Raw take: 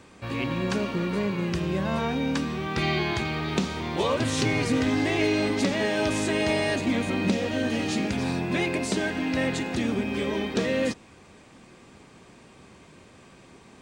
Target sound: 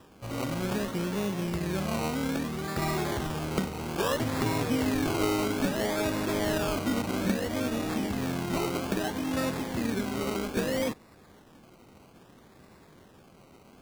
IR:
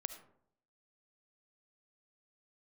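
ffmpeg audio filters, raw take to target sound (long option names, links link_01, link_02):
-af "acrusher=samples=20:mix=1:aa=0.000001:lfo=1:lforange=12:lforate=0.61,volume=-3.5dB"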